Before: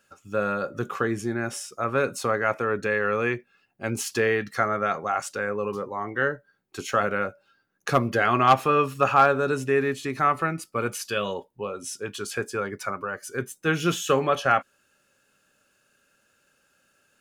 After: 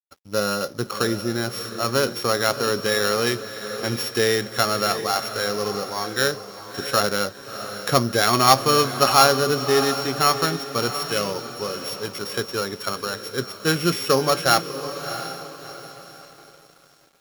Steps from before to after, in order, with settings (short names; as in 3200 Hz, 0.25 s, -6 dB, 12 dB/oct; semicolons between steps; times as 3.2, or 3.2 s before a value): sample sorter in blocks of 8 samples; diffused feedback echo 0.668 s, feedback 44%, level -10 dB; crossover distortion -51.5 dBFS; gain +3 dB